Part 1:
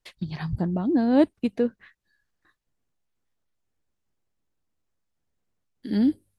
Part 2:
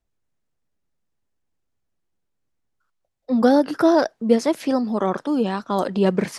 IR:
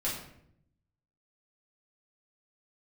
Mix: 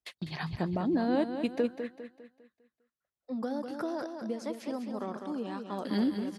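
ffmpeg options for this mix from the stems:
-filter_complex "[0:a]agate=range=-20dB:threshold=-47dB:ratio=16:detection=peak,lowshelf=f=270:g=-12,acompressor=threshold=-26dB:ratio=6,volume=1.5dB,asplit=3[a][b][c];[b]volume=-8.5dB[d];[1:a]acompressor=threshold=-17dB:ratio=6,volume=-14dB,asplit=2[e][f];[f]volume=-6.5dB[g];[c]apad=whole_len=281753[h];[e][h]sidechaincompress=threshold=-35dB:ratio=8:attack=16:release=1350[i];[d][g]amix=inputs=2:normalize=0,aecho=0:1:201|402|603|804|1005|1206:1|0.42|0.176|0.0741|0.0311|0.0131[j];[a][i][j]amix=inputs=3:normalize=0,highpass=58"

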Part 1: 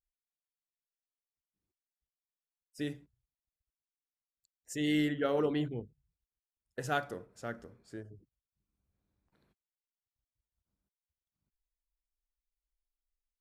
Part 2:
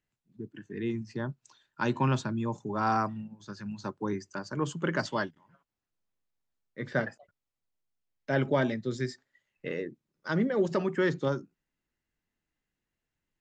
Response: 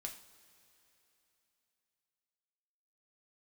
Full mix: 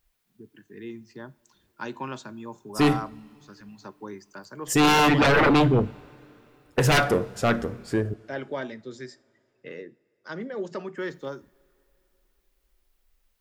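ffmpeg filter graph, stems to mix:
-filter_complex "[0:a]aeval=exprs='0.15*sin(PI/2*6.31*val(0)/0.15)':c=same,equalizer=f=7.4k:w=0.75:g=-5,volume=-0.5dB,asplit=3[a][b][c];[a]atrim=end=8.14,asetpts=PTS-STARTPTS,afade=t=out:st=8.136:d=0.004:c=hsin[d];[b]atrim=start=8.14:end=10.97,asetpts=PTS-STARTPTS,volume=0[e];[c]atrim=start=10.97,asetpts=PTS-STARTPTS,afade=t=in:d=0.004:c=hsin[f];[d][e][f]concat=n=3:v=0:a=1,asplit=2[g][h];[h]volume=-6dB[i];[1:a]bass=f=250:g=-5,treble=f=4k:g=1,acrossover=split=180|3000[j][k][l];[j]acompressor=threshold=-46dB:ratio=6[m];[m][k][l]amix=inputs=3:normalize=0,volume=-6dB,asplit=2[n][o];[o]volume=-9dB[p];[2:a]atrim=start_sample=2205[q];[i][p]amix=inputs=2:normalize=0[r];[r][q]afir=irnorm=-1:irlink=0[s];[g][n][s]amix=inputs=3:normalize=0"

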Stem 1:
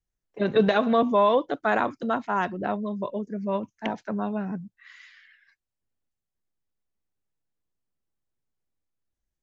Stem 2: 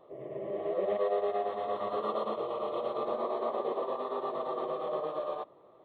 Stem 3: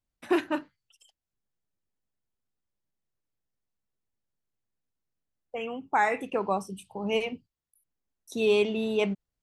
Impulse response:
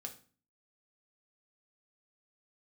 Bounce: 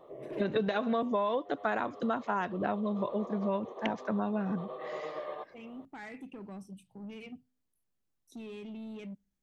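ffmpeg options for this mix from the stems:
-filter_complex "[0:a]volume=-0.5dB,asplit=2[a][b];[1:a]acompressor=threshold=-51dB:ratio=1.5,volume=2dB,asplit=2[c][d];[d]volume=-17dB[e];[2:a]equalizer=f=125:t=o:w=1:g=9,equalizer=f=250:t=o:w=1:g=11,equalizer=f=500:t=o:w=1:g=-3,equalizer=f=1k:t=o:w=1:g=-7,equalizer=f=2k:t=o:w=1:g=4,alimiter=limit=-18.5dB:level=0:latency=1:release=56,asoftclip=type=tanh:threshold=-23dB,volume=-16dB,asplit=2[f][g];[g]volume=-21.5dB[h];[b]apad=whole_len=257980[i];[c][i]sidechaincompress=threshold=-30dB:ratio=8:attack=10:release=939[j];[3:a]atrim=start_sample=2205[k];[e][h]amix=inputs=2:normalize=0[l];[l][k]afir=irnorm=-1:irlink=0[m];[a][j][f][m]amix=inputs=4:normalize=0,acompressor=threshold=-27dB:ratio=6"

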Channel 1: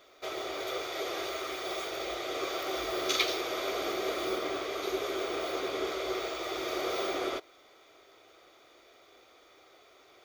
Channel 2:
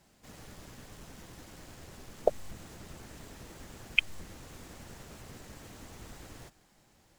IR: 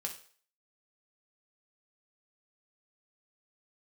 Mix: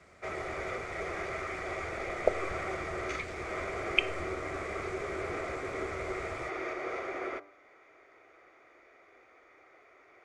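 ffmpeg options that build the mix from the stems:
-filter_complex "[0:a]highshelf=f=2.7k:t=q:w=3:g=-9,bandreject=f=98.46:t=h:w=4,bandreject=f=196.92:t=h:w=4,bandreject=f=295.38:t=h:w=4,bandreject=f=393.84:t=h:w=4,bandreject=f=492.3:t=h:w=4,bandreject=f=590.76:t=h:w=4,bandreject=f=689.22:t=h:w=4,bandreject=f=787.68:t=h:w=4,bandreject=f=886.14:t=h:w=4,bandreject=f=984.6:t=h:w=4,bandreject=f=1.08306k:t=h:w=4,bandreject=f=1.18152k:t=h:w=4,bandreject=f=1.27998k:t=h:w=4,bandreject=f=1.37844k:t=h:w=4,bandreject=f=1.4769k:t=h:w=4,bandreject=f=1.57536k:t=h:w=4,alimiter=level_in=0.5dB:limit=-24dB:level=0:latency=1:release=439,volume=-0.5dB,volume=-1.5dB[a];[1:a]equalizer=f=79:t=o:w=0.82:g=10.5,volume=-3dB,asplit=2[b][c];[c]volume=-9.5dB[d];[2:a]atrim=start_sample=2205[e];[d][e]afir=irnorm=-1:irlink=0[f];[a][b][f]amix=inputs=3:normalize=0,lowpass=f=9.2k:w=0.5412,lowpass=f=9.2k:w=1.3066"

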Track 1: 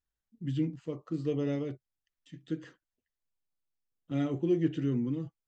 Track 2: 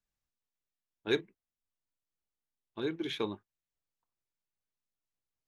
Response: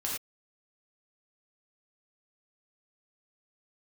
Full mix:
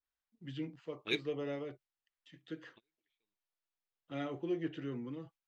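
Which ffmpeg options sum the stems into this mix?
-filter_complex "[0:a]acrossover=split=490 5100:gain=0.2 1 0.126[a][b][c];[a][b][c]amix=inputs=3:normalize=0,volume=0.5dB,asplit=2[d][e];[1:a]highshelf=f=1.8k:t=q:w=3:g=7.5,volume=-9dB[f];[e]apad=whole_len=241625[g];[f][g]sidechaingate=range=-50dB:threshold=-60dB:ratio=16:detection=peak[h];[d][h]amix=inputs=2:normalize=0,asoftclip=type=hard:threshold=-19dB,adynamicequalizer=threshold=0.00178:dfrequency=1900:dqfactor=0.7:tfrequency=1900:tqfactor=0.7:attack=5:release=100:ratio=0.375:range=2:mode=cutabove:tftype=highshelf"

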